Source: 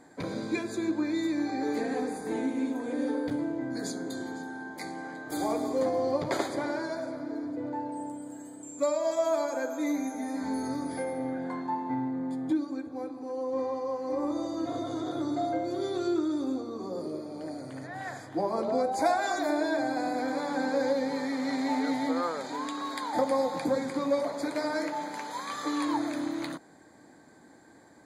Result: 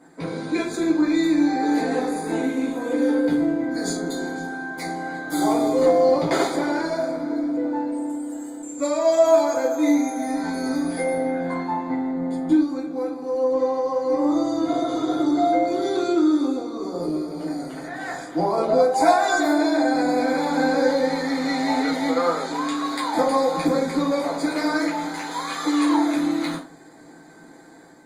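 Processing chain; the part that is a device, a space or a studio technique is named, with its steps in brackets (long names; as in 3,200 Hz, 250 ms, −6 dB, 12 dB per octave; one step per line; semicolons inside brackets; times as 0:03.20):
far-field microphone of a smart speaker (convolution reverb RT60 0.30 s, pre-delay 5 ms, DRR −4 dB; high-pass filter 130 Hz 12 dB per octave; automatic gain control gain up to 3.5 dB; Opus 32 kbit/s 48,000 Hz)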